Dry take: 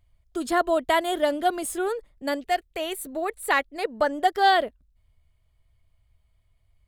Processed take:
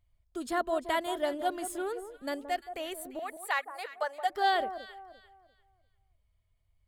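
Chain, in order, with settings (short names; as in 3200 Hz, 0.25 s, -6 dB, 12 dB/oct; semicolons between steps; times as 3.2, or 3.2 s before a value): 3.19–4.3 HPF 590 Hz 24 dB/oct; echo with dull and thin repeats by turns 0.173 s, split 1200 Hz, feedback 51%, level -10 dB; gain -8 dB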